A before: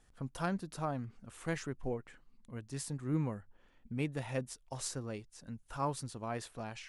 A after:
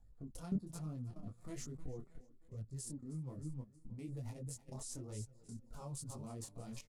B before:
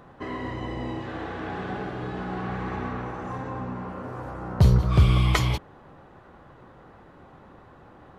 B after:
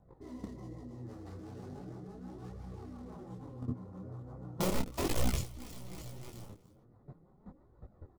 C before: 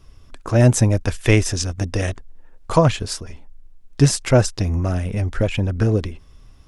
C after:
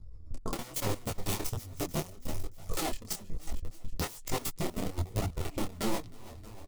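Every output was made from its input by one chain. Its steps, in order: Wiener smoothing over 15 samples; rotary speaker horn 6 Hz; tone controls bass +5 dB, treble +12 dB; wrapped overs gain 13 dB; notch 1600 Hz, Q 7.2; feedback echo 0.314 s, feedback 44%, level -15 dB; compressor 20:1, threshold -28 dBFS; flange 0.38 Hz, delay 1.2 ms, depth 9.3 ms, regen +14%; level quantiser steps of 17 dB; bell 1800 Hz -6 dB 2.8 oct; detuned doubles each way 40 cents; gain +9.5 dB

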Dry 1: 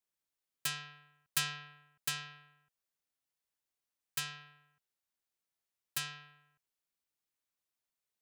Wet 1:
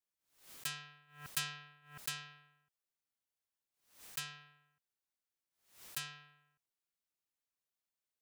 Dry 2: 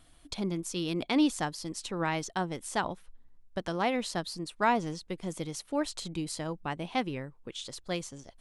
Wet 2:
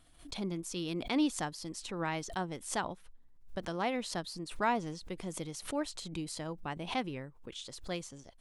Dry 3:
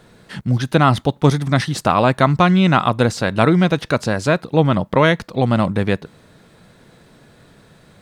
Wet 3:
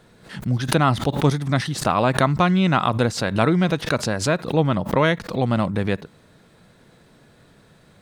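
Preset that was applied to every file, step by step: backwards sustainer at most 120 dB/s; gain -4.5 dB

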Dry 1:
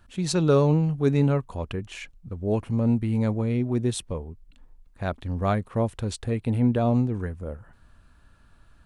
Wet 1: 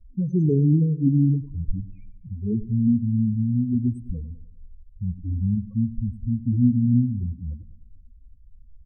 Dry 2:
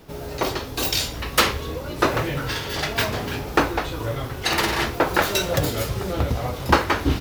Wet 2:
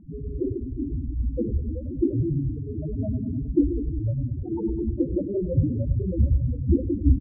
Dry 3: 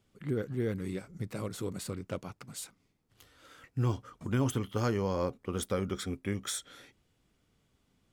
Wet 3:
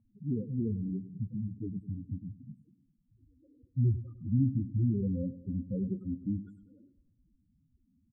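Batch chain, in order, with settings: half-waves squared off; graphic EQ 250/1000/2000/4000 Hz +7/-4/-10/-12 dB; loudest bins only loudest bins 4; low shelf 82 Hz +10 dB; on a send: feedback echo 0.101 s, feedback 50%, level -15.5 dB; on the sum: low-pass opened by the level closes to 890 Hz, open at -10.5 dBFS; gain -5.5 dB

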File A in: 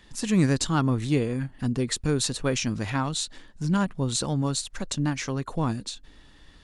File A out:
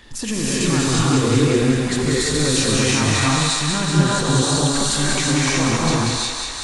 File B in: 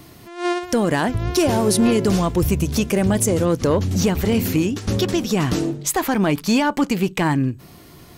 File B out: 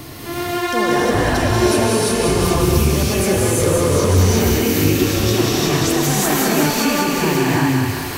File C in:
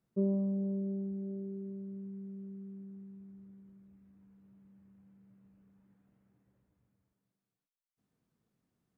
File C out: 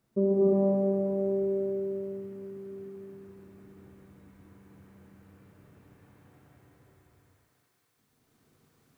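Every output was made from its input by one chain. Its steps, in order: bell 180 Hz -12 dB 0.22 oct; notches 60/120 Hz; in parallel at +2 dB: negative-ratio compressor -22 dBFS; on the sum: limiter -18.5 dBFS; on a send: thinning echo 0.189 s, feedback 75%, high-pass 590 Hz, level -4 dB; on the sum: non-linear reverb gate 0.38 s rising, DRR -7 dB; gain +1.5 dB

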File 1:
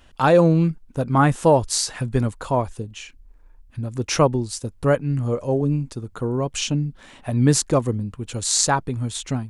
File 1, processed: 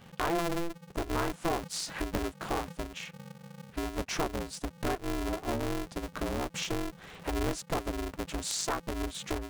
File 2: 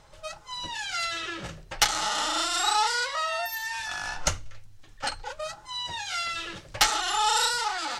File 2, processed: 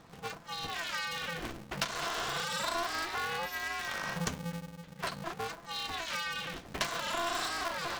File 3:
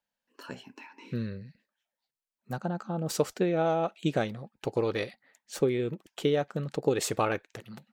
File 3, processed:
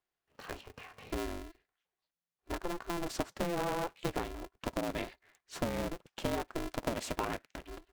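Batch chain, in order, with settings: high shelf 5700 Hz -10.5 dB; compressor 3:1, threshold -32 dBFS; polarity switched at an audio rate 170 Hz; gain -1 dB

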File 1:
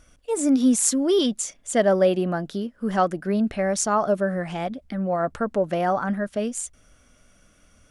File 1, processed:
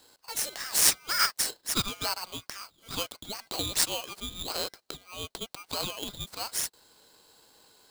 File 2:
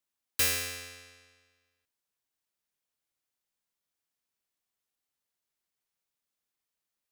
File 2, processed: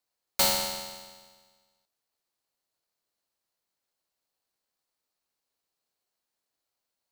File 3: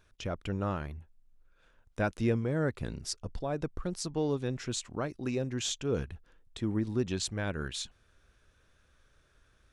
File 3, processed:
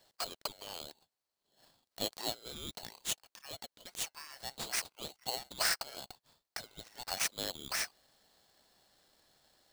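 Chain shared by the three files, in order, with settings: resonant high-pass 2400 Hz, resonance Q 3.6; polarity switched at an audio rate 1800 Hz

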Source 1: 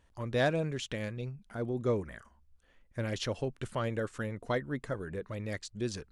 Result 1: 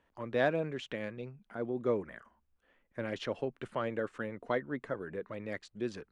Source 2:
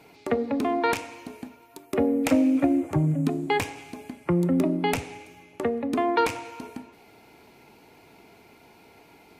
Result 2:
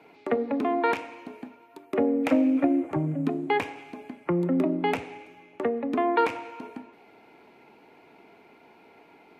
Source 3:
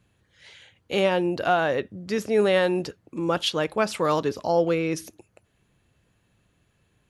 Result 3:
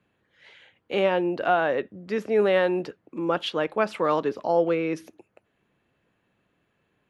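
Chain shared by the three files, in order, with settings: three-band isolator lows -14 dB, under 180 Hz, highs -15 dB, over 3200 Hz

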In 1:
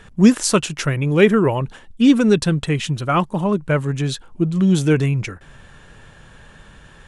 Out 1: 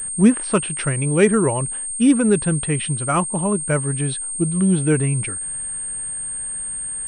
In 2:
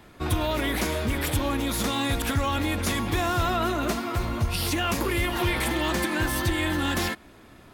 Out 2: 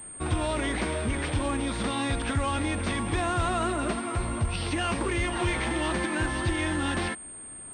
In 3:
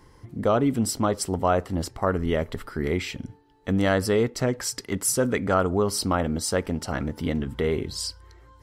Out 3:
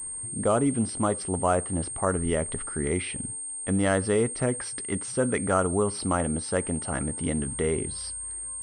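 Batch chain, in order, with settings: treble ducked by the level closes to 3000 Hz, closed at -13 dBFS; pulse-width modulation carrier 8600 Hz; gain -2 dB

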